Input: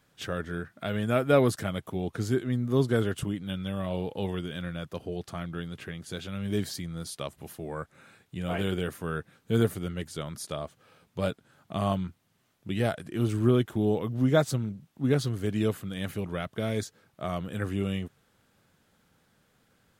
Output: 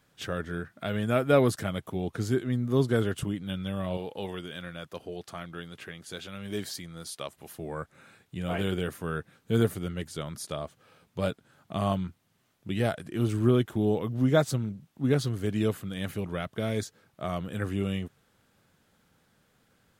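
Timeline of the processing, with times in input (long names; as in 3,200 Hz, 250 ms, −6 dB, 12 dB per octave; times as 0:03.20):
0:03.97–0:07.54: low-shelf EQ 250 Hz −10.5 dB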